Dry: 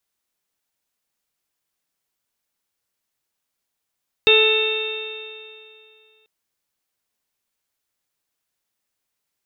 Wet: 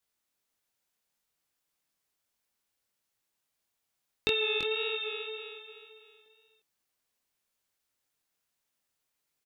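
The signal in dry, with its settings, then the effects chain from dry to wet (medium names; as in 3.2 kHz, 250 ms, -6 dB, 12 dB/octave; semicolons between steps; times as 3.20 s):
stretched partials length 1.99 s, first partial 434 Hz, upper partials -15.5/-14.5/-16.5/-16/0.5/-19.5/0 dB, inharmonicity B 0.0016, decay 2.47 s, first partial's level -14 dB
compression 10:1, threshold -23 dBFS; chorus 1.6 Hz, delay 20 ms, depth 7.9 ms; on a send: delay 337 ms -7.5 dB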